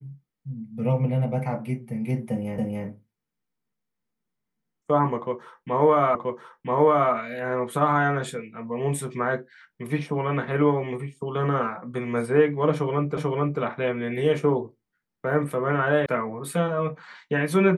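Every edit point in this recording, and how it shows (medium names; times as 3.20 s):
2.58 s: repeat of the last 0.28 s
6.15 s: repeat of the last 0.98 s
13.17 s: repeat of the last 0.44 s
16.06 s: sound stops dead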